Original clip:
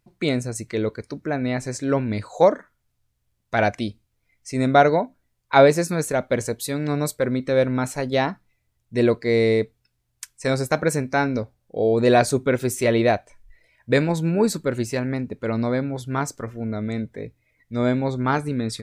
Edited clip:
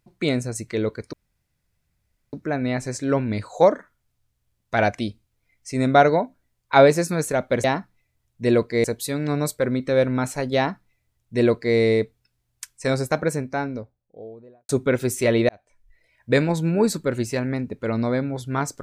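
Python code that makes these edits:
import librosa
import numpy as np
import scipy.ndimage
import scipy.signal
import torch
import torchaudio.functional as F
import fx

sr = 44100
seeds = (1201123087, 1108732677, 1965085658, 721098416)

y = fx.studio_fade_out(x, sr, start_s=10.35, length_s=1.94)
y = fx.edit(y, sr, fx.insert_room_tone(at_s=1.13, length_s=1.2),
    fx.duplicate(start_s=8.16, length_s=1.2, to_s=6.44),
    fx.fade_in_span(start_s=13.09, length_s=0.84), tone=tone)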